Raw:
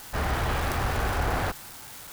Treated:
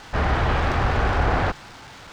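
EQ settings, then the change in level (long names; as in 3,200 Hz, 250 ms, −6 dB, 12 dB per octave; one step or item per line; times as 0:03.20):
high-frequency loss of the air 150 metres
+6.5 dB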